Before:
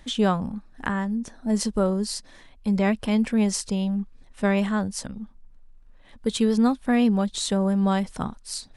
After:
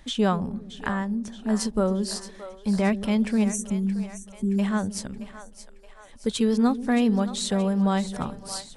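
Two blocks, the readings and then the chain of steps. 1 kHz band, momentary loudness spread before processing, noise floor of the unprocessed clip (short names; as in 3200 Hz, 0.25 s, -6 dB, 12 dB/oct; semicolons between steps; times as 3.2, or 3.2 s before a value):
-1.0 dB, 12 LU, -52 dBFS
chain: spectral delete 3.44–4.59, 390–5700 Hz; split-band echo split 460 Hz, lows 0.13 s, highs 0.623 s, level -12.5 dB; gain -1 dB; AAC 128 kbps 48000 Hz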